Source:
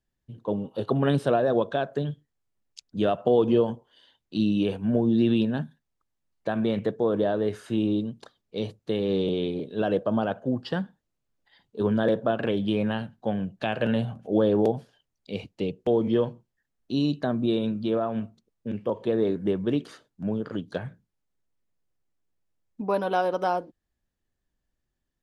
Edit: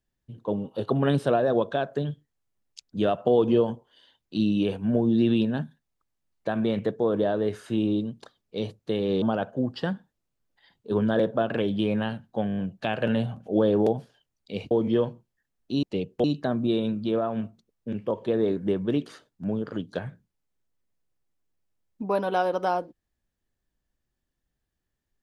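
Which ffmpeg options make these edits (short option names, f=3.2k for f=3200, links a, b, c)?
-filter_complex "[0:a]asplit=10[a][b][c][d][e][f][g][h][i][j];[a]atrim=end=9.222[k];[b]atrim=start=10.108:end=13.382[l];[c]atrim=start=13.358:end=13.382[m];[d]atrim=start=13.358:end=13.382[n];[e]atrim=start=13.358:end=13.382[o];[f]atrim=start=13.358:end=13.382[p];[g]atrim=start=13.358:end=15.502[q];[h]atrim=start=15.908:end=17.032[r];[i]atrim=start=15.498:end=15.912[s];[j]atrim=start=17.028[t];[k][l]acrossfade=d=0.004:c1=hsin:c2=hsin[u];[u][m]acrossfade=d=0.004:c1=hsin:c2=hsin[v];[v][n]acrossfade=d=0.004:c1=hsin:c2=hsin[w];[w][o]acrossfade=d=0.004:c1=hsin:c2=hsin[x];[x][p]acrossfade=d=0.004:c1=hsin:c2=hsin[y];[y][q]acrossfade=d=0.004:c1=hsin:c2=hsin[z];[z][r]acrossfade=d=0.004:c1=hsin:c2=hsin[aa];[aa][s]acrossfade=d=0.004:c1=hsin:c2=hsin[ab];[ab][t]acrossfade=d=0.004:c1=hsin:c2=hsin"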